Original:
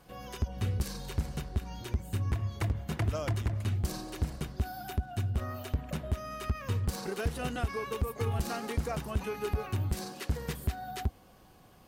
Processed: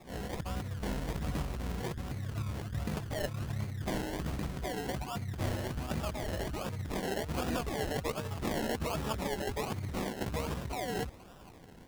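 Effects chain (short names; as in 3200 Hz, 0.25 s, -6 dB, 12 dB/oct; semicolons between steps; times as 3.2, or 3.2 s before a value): harmoniser +5 st -5 dB, +12 st -12 dB; negative-ratio compressor -35 dBFS, ratio -1; decimation with a swept rate 29×, swing 60% 1.3 Hz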